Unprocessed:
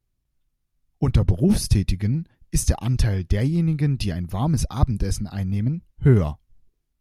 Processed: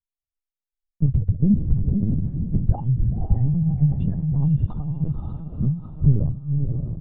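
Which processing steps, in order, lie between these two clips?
spectral contrast enhancement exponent 2.3; 4.69–5.61 s: high-pass 480 Hz 12 dB/octave; gate with hold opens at -44 dBFS; 1.31–2.61 s: low-pass 1.7 kHz 24 dB/octave; transient shaper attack +8 dB, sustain +2 dB; peak limiter -8 dBFS, peak gain reduction 8.5 dB; doubling 14 ms -10.5 dB; echo that smears into a reverb 540 ms, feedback 44%, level -4 dB; LPC vocoder at 8 kHz pitch kept; trim -2 dB

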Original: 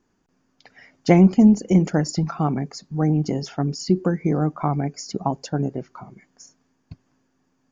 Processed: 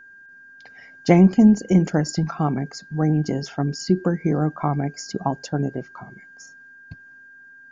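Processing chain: whistle 1.6 kHz -44 dBFS

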